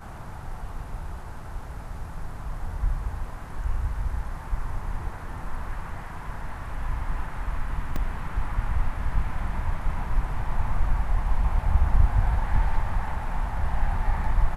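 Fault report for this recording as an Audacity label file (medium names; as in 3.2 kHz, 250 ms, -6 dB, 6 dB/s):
7.960000	7.960000	dropout 2.2 ms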